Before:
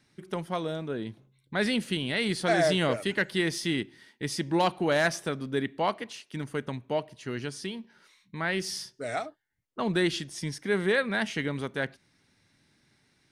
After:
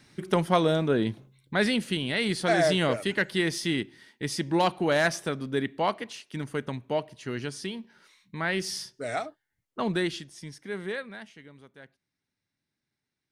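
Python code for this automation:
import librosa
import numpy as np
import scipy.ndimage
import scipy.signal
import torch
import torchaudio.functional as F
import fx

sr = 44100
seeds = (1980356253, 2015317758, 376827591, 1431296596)

y = fx.gain(x, sr, db=fx.line((1.07, 9.0), (1.77, 1.0), (9.84, 1.0), (10.36, -8.0), (10.93, -8.0), (11.37, -19.0)))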